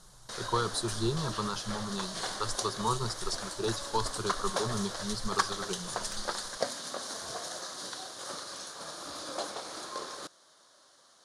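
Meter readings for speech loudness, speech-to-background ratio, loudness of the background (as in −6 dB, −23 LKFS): −35.0 LKFS, 2.0 dB, −37.0 LKFS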